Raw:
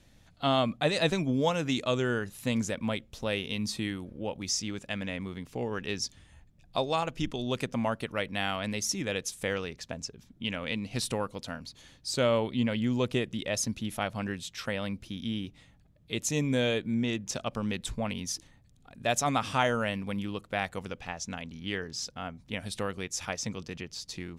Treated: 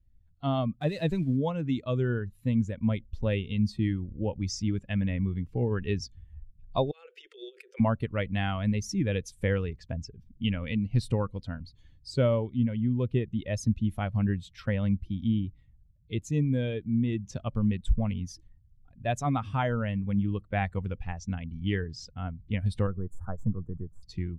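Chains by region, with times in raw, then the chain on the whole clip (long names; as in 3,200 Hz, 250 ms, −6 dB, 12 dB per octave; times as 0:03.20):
0:00.81–0:01.37: spike at every zero crossing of −25.5 dBFS + low-pass filter 9,100 Hz
0:06.91–0:07.80: Butterworth high-pass 380 Hz 96 dB per octave + flat-topped bell 830 Hz −15 dB 1.1 octaves + compressor whose output falls as the input rises −45 dBFS
0:22.87–0:24.03: gain on one half-wave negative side −3 dB + de-essing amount 75% + elliptic band-stop filter 1,400–7,900 Hz, stop band 50 dB
whole clip: spectral dynamics exaggerated over time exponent 1.5; RIAA equalisation playback; speech leveller within 5 dB 0.5 s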